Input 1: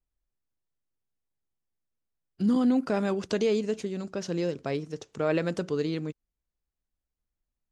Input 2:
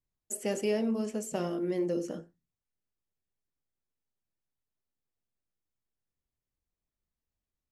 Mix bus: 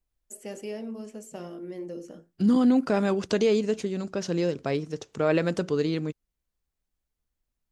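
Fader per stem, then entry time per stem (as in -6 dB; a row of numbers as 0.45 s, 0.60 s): +3.0 dB, -6.5 dB; 0.00 s, 0.00 s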